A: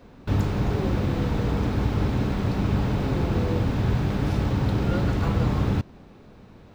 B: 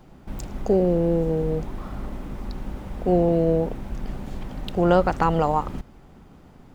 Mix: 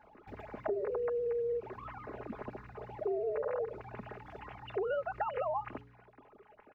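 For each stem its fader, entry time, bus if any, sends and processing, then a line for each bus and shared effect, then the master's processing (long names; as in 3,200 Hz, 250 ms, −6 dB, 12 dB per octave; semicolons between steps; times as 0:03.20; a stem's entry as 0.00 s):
−7.5 dB, 0.00 s, no send, downward compressor 3 to 1, threshold −26 dBFS, peak gain reduction 7 dB; tuned comb filter 60 Hz, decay 1.3 s, harmonics all, mix 80%; automatic ducking −9 dB, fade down 0.45 s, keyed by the second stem
−2.0 dB, 0.00 s, polarity flipped, no send, three sine waves on the formant tracks; comb filter 4.8 ms, depth 57%; downward compressor, threshold −25 dBFS, peak gain reduction 15.5 dB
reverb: not used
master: parametric band 3,200 Hz −10.5 dB 0.2 octaves; hum removal 140.9 Hz, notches 3; downward compressor 2 to 1, threshold −35 dBFS, peak gain reduction 6.5 dB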